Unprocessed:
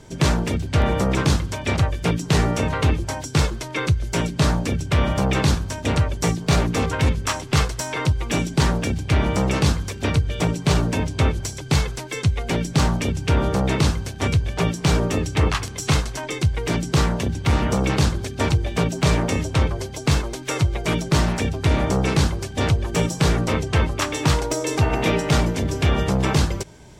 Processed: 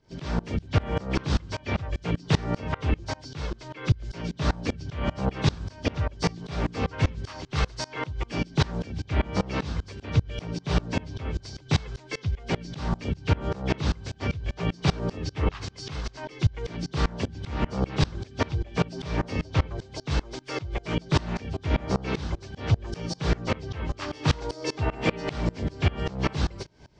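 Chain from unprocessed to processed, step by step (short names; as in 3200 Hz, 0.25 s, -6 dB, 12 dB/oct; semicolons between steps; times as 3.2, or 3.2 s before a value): nonlinear frequency compression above 2900 Hz 1.5:1; dB-ramp tremolo swelling 5.1 Hz, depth 25 dB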